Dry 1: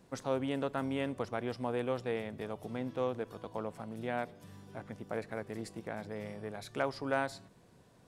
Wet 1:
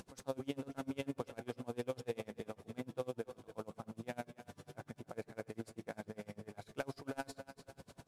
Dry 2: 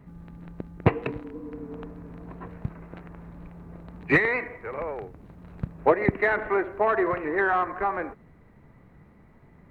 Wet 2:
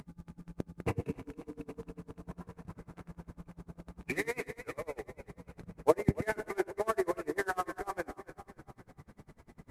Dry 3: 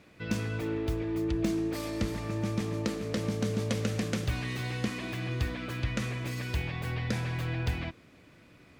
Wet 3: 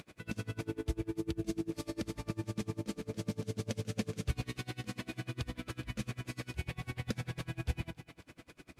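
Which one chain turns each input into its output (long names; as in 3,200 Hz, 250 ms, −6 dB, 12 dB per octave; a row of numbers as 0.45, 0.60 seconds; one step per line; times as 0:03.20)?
variable-slope delta modulation 64 kbit/s
notch filter 1,900 Hz, Q 18
hum removal 98.83 Hz, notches 31
dynamic equaliser 1,200 Hz, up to −6 dB, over −41 dBFS, Q 0.76
upward compression, threshold −42 dBFS
echo with a time of its own for lows and highs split 330 Hz, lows 115 ms, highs 275 ms, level −12 dB
tremolo with a sine in dB 10 Hz, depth 29 dB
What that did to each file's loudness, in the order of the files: −8.0, −10.0, −7.0 LU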